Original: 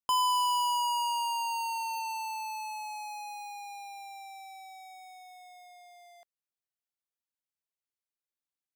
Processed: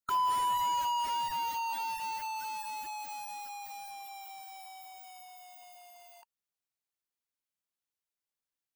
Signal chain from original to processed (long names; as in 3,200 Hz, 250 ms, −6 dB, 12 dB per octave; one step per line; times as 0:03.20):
formants moved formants +5 semitones
slew-rate limiting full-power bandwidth 61 Hz